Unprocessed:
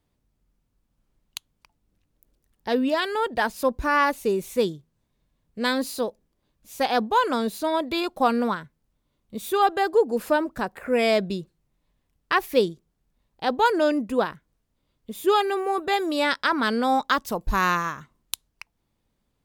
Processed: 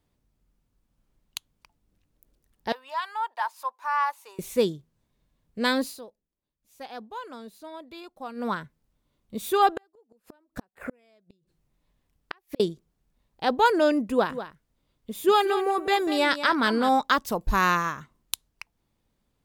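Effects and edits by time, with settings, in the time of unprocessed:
2.72–4.39 ladder high-pass 870 Hz, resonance 70%
5.79–8.57 dip -17 dB, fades 0.22 s
9.72–12.6 flipped gate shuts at -20 dBFS, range -41 dB
14.1–16.89 echo 0.193 s -11.5 dB

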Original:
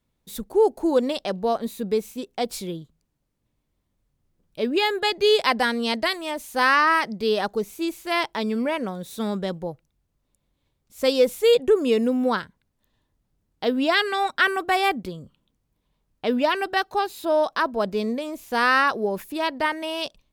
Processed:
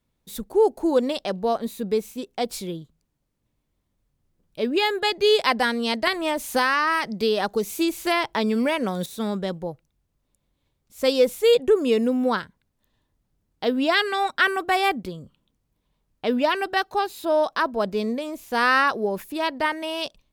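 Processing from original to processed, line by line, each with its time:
6.07–9.06 three-band squash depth 100%

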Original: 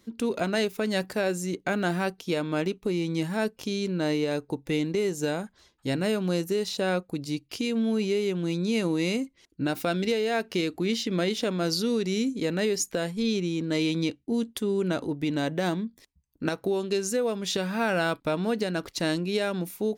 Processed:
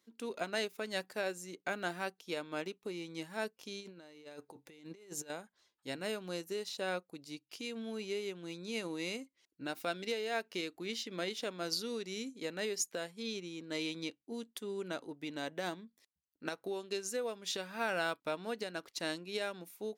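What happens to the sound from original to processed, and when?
3.79–5.3 negative-ratio compressor -32 dBFS, ratio -0.5
whole clip: HPF 560 Hz 6 dB/oct; upward expander 1.5:1, over -40 dBFS; gain -5.5 dB

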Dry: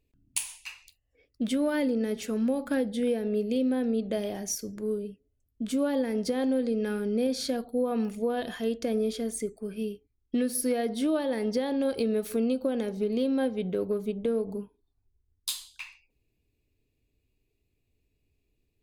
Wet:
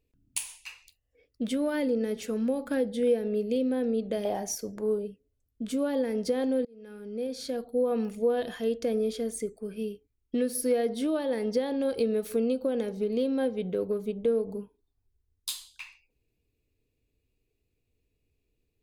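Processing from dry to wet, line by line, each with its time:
4.25–5.08 bell 820 Hz +12.5 dB 1.1 oct
6.65–7.91 fade in
whole clip: bell 480 Hz +6.5 dB 0.22 oct; gain -2 dB

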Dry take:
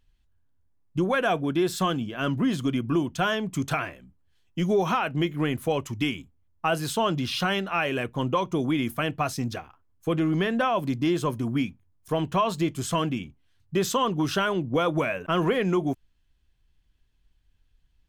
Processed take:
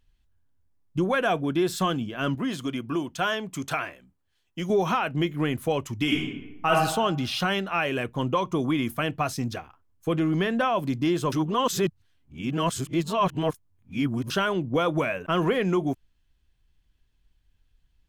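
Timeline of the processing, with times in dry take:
2.35–4.7 low shelf 240 Hz -10 dB
6.03–6.71 reverb throw, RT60 0.98 s, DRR -3.5 dB
8.43–8.87 bell 1100 Hz +8 dB 0.25 oct
11.32–14.3 reverse

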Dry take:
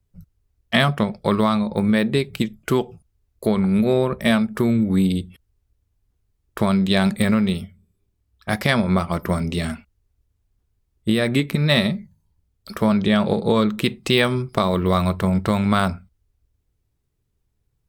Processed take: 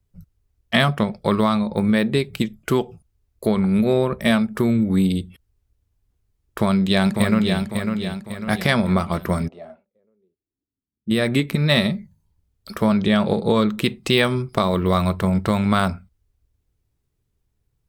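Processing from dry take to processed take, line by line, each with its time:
6.59–7.59 echo throw 0.55 s, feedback 45%, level -5.5 dB
9.47–11.1 band-pass 740 Hz -> 200 Hz, Q 5.2

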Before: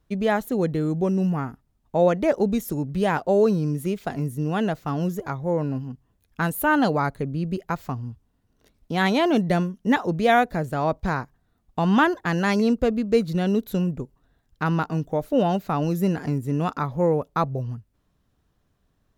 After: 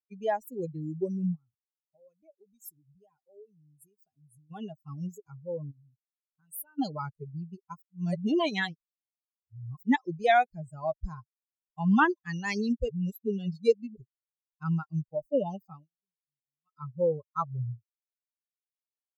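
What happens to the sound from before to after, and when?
1.35–4.51 compressor 3:1, threshold -34 dBFS
5.71–6.79 compressor 4:1, threshold -31 dBFS
7.82–9.83 reverse
12.89–13.96 reverse
15.69–16.84 dip -24 dB, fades 0.20 s
whole clip: per-bin expansion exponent 3

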